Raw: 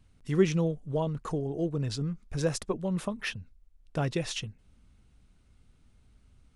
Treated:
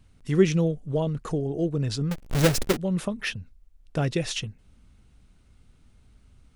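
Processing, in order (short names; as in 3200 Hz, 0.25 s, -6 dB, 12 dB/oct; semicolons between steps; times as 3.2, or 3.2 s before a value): 2.11–2.77 half-waves squared off; dynamic EQ 990 Hz, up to -6 dB, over -48 dBFS, Q 2; gain +4.5 dB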